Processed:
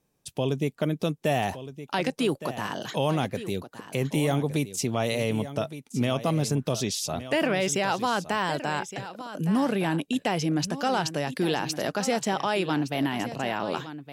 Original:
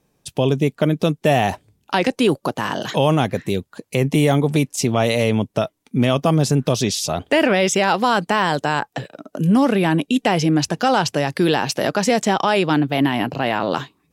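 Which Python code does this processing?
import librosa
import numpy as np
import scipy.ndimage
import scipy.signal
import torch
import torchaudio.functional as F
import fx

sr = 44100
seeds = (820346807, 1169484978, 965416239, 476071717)

p1 = fx.high_shelf(x, sr, hz=6300.0, db=4.5)
p2 = p1 + fx.echo_single(p1, sr, ms=1165, db=-13.0, dry=0)
y = p2 * 10.0 ** (-9.0 / 20.0)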